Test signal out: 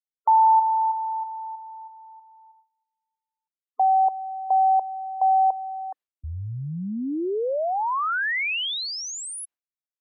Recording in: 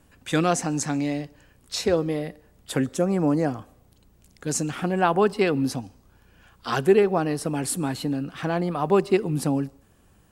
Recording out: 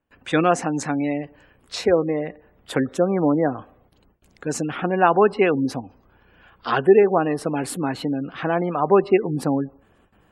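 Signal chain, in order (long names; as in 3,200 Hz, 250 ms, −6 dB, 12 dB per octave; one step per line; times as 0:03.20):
bass and treble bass −7 dB, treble −10 dB
noise gate with hold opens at −53 dBFS
gate on every frequency bin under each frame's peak −30 dB strong
level +5 dB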